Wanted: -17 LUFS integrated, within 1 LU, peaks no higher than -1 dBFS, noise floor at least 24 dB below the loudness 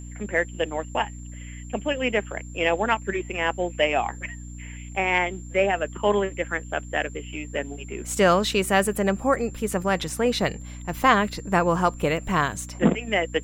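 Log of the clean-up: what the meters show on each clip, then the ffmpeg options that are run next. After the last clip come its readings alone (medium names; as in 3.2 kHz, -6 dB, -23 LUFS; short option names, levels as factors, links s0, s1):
hum 60 Hz; highest harmonic 300 Hz; hum level -36 dBFS; steady tone 7.3 kHz; tone level -47 dBFS; loudness -24.5 LUFS; peak level -5.5 dBFS; loudness target -17.0 LUFS
-> -af "bandreject=f=60:t=h:w=6,bandreject=f=120:t=h:w=6,bandreject=f=180:t=h:w=6,bandreject=f=240:t=h:w=6,bandreject=f=300:t=h:w=6"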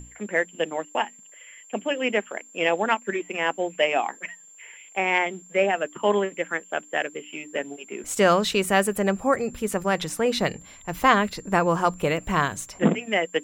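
hum not found; steady tone 7.3 kHz; tone level -47 dBFS
-> -af "bandreject=f=7300:w=30"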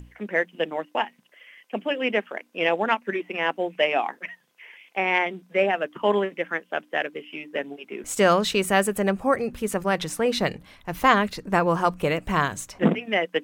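steady tone not found; loudness -24.5 LUFS; peak level -5.5 dBFS; loudness target -17.0 LUFS
-> -af "volume=2.37,alimiter=limit=0.891:level=0:latency=1"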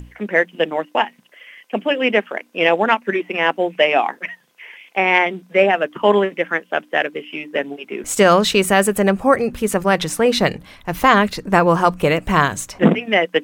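loudness -17.5 LUFS; peak level -1.0 dBFS; noise floor -54 dBFS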